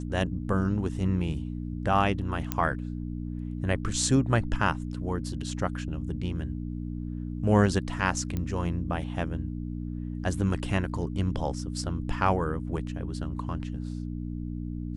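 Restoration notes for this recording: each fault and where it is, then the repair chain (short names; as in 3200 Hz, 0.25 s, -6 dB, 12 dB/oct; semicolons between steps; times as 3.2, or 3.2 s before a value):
hum 60 Hz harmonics 5 -34 dBFS
2.52 pop -11 dBFS
8.37 pop -19 dBFS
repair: de-click; de-hum 60 Hz, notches 5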